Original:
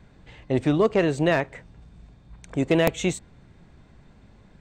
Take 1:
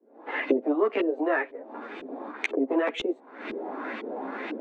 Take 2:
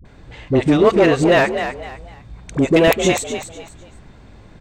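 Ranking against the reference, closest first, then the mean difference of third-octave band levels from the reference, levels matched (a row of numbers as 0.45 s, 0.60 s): 2, 1; 6.5 dB, 14.0 dB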